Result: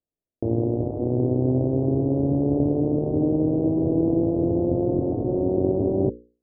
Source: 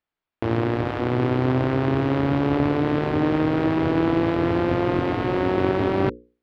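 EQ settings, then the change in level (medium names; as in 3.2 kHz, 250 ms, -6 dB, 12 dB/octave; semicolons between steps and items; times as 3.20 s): steep low-pass 640 Hz 36 dB/octave; 0.0 dB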